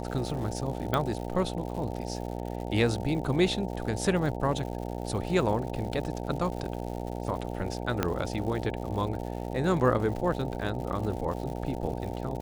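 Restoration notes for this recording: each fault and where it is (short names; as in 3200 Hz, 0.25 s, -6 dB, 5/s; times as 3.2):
buzz 60 Hz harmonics 15 -35 dBFS
crackle 160/s -37 dBFS
0.94 pop -14 dBFS
8.03 pop -11 dBFS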